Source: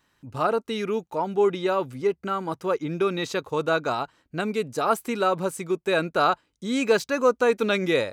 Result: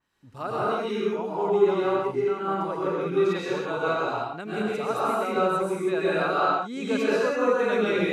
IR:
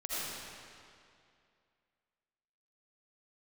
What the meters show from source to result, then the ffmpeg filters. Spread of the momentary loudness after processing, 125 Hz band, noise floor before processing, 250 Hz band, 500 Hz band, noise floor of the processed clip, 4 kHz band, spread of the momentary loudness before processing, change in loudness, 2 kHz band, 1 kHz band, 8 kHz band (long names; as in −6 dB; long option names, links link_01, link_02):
6 LU, −1.5 dB, −72 dBFS, 0.0 dB, 0.0 dB, −38 dBFS, −4.5 dB, 7 LU, −0.5 dB, −1.5 dB, −0.5 dB, −7.0 dB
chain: -filter_complex "[1:a]atrim=start_sample=2205,afade=type=out:start_time=0.25:duration=0.01,atrim=end_sample=11466,asetrate=26460,aresample=44100[link_01];[0:a][link_01]afir=irnorm=-1:irlink=0,adynamicequalizer=threshold=0.0141:dfrequency=3300:dqfactor=0.7:tfrequency=3300:tqfactor=0.7:attack=5:release=100:ratio=0.375:range=3:mode=cutabove:tftype=highshelf,volume=-7.5dB"